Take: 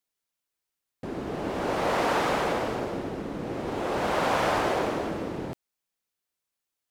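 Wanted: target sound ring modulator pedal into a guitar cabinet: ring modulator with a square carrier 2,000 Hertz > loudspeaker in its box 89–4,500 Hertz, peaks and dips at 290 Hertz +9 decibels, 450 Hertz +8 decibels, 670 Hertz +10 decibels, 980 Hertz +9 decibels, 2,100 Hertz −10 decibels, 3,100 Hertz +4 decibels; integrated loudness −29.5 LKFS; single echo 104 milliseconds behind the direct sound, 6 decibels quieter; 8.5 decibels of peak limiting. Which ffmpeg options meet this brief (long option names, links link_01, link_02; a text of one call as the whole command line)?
ffmpeg -i in.wav -af "alimiter=limit=-20.5dB:level=0:latency=1,aecho=1:1:104:0.501,aeval=exprs='val(0)*sgn(sin(2*PI*2000*n/s))':channel_layout=same,highpass=89,equalizer=frequency=290:width_type=q:width=4:gain=9,equalizer=frequency=450:width_type=q:width=4:gain=8,equalizer=frequency=670:width_type=q:width=4:gain=10,equalizer=frequency=980:width_type=q:width=4:gain=9,equalizer=frequency=2100:width_type=q:width=4:gain=-10,equalizer=frequency=3100:width_type=q:width=4:gain=4,lowpass=frequency=4500:width=0.5412,lowpass=frequency=4500:width=1.3066,volume=-1.5dB" out.wav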